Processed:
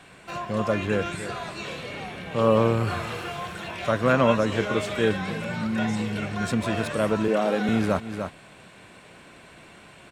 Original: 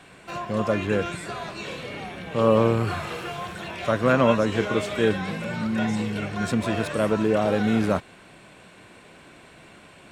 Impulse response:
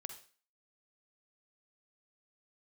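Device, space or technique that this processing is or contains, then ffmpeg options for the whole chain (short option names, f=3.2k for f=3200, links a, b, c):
ducked delay: -filter_complex "[0:a]asettb=1/sr,asplit=3[a][b][c];[a]atrim=end=7.284[d];[b]atrim=start=7.28:end=7.69,asetpts=PTS-STARTPTS,afade=t=in:d=0.004:c=qsin,afade=t=out:st=0.406:d=0.004:c=qsin,highpass=f=180:w=0.5412,highpass=f=180:w=1.3066[e];[c]atrim=start=7.686[f];[d][e]acrossfade=d=0.004:c1=hsin:c2=qsin[g];[g][f]acrossfade=d=0.004:c1=qsin:c2=hsin,equalizer=f=330:t=o:w=1.4:g=-2,asplit=3[h][i][j];[i]adelay=298,volume=-7dB[k];[j]apad=whole_len=459218[l];[k][l]sidechaincompress=threshold=-40dB:ratio=4:attack=31:release=134[m];[h][m]amix=inputs=2:normalize=0"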